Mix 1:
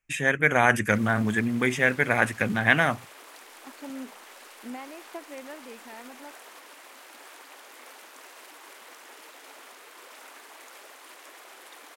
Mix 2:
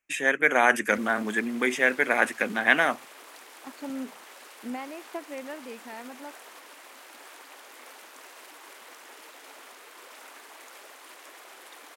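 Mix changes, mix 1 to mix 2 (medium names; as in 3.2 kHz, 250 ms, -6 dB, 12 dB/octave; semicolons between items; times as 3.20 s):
first voice: add high-pass 250 Hz 24 dB/octave; second voice +3.5 dB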